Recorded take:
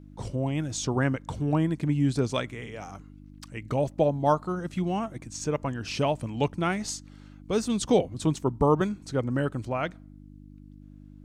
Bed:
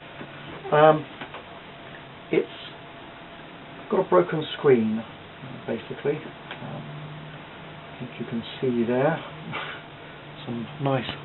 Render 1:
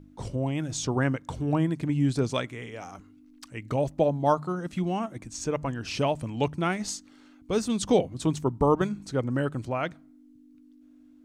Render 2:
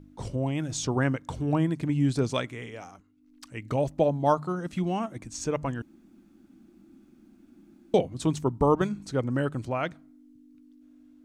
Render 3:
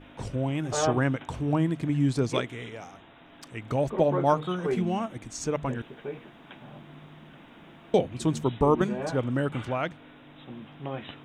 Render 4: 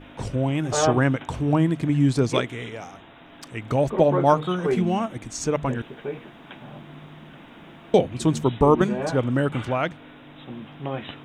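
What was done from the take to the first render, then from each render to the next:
hum removal 50 Hz, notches 4
0:02.58–0:03.61: duck −11.5 dB, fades 0.45 s equal-power; 0:05.82–0:07.94: fill with room tone
mix in bed −11 dB
level +5 dB

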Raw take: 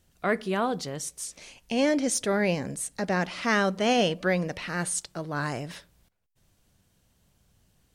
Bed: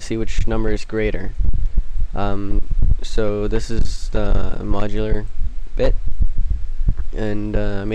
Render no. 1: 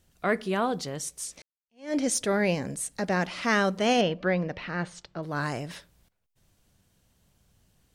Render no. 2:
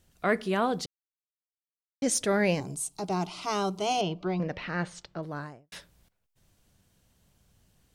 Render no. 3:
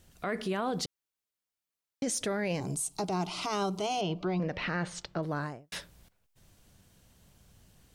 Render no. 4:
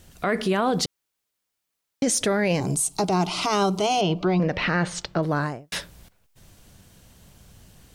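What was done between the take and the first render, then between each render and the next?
0:01.42–0:01.95: fade in exponential; 0:04.01–0:05.23: high-frequency loss of the air 200 metres
0:00.86–0:02.02: silence; 0:02.60–0:04.40: phaser with its sweep stopped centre 350 Hz, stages 8; 0:05.06–0:05.72: fade out and dull
in parallel at −2 dB: downward compressor, threshold −35 dBFS, peak gain reduction 14 dB; on the sum: brickwall limiter −23.5 dBFS, peak gain reduction 11 dB
level +9.5 dB

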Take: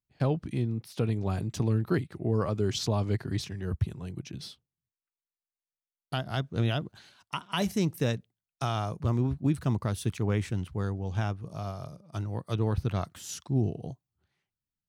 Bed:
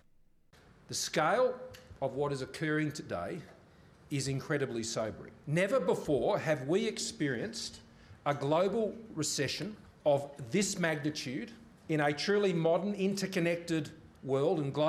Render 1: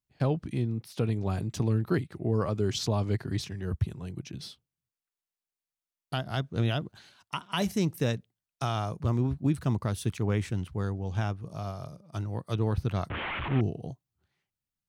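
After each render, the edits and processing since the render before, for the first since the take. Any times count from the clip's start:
0:13.10–0:13.61: linear delta modulator 16 kbit/s, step −27 dBFS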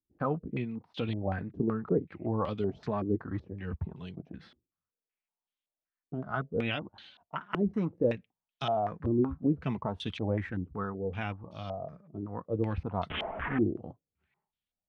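flanger 0.87 Hz, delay 3.4 ms, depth 1.4 ms, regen −36%
low-pass on a step sequencer 5.3 Hz 350–3,300 Hz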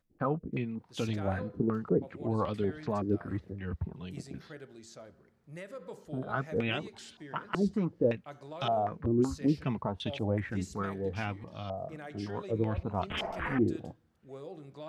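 mix in bed −15 dB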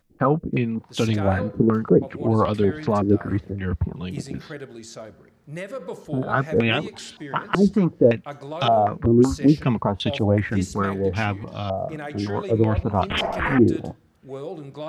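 level +11.5 dB

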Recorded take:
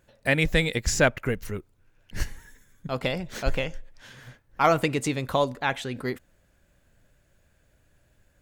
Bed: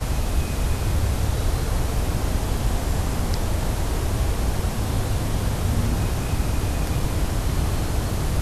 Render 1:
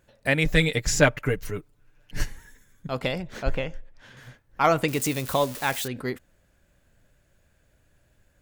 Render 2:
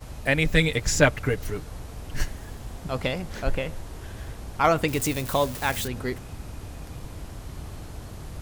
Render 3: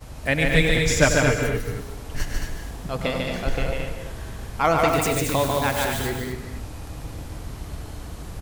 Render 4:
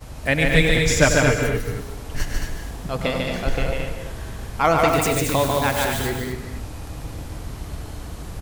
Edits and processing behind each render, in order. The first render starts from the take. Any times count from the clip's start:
0:00.45–0:02.26: comb filter 6.8 ms; 0:03.22–0:04.17: high-shelf EQ 3,800 Hz −10 dB; 0:04.88–0:05.88: spike at every zero crossing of −24.5 dBFS
mix in bed −15 dB
loudspeakers that aren't time-aligned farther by 34 metres −11 dB, 50 metres −3 dB, 76 metres −6 dB; reverb whose tail is shaped and stops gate 280 ms rising, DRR 7 dB
level +2 dB; brickwall limiter −3 dBFS, peak gain reduction 1 dB

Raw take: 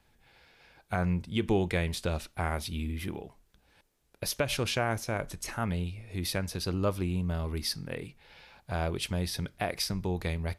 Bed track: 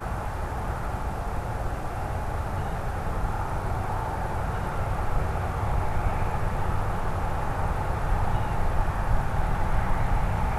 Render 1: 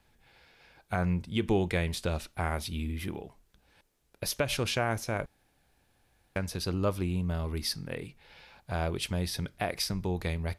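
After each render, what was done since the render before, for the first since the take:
0:05.26–0:06.36: fill with room tone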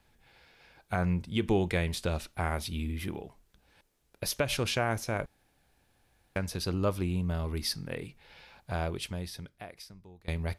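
0:08.70–0:10.28: fade out quadratic, to −22.5 dB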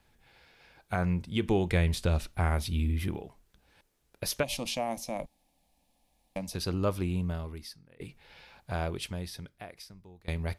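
0:01.69–0:03.17: low-shelf EQ 130 Hz +9.5 dB
0:04.43–0:06.54: phaser with its sweep stopped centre 400 Hz, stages 6
0:07.24–0:08.00: fade out quadratic, to −23.5 dB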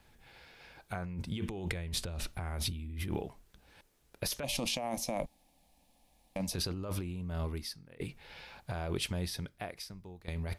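brickwall limiter −22.5 dBFS, peak gain reduction 8.5 dB
compressor whose output falls as the input rises −36 dBFS, ratio −1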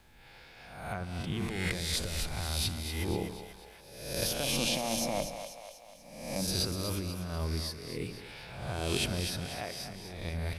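peak hold with a rise ahead of every peak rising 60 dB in 0.86 s
echo with a time of its own for lows and highs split 500 Hz, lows 86 ms, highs 244 ms, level −8.5 dB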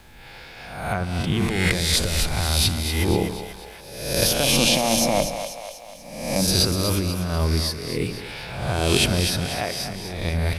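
level +12 dB

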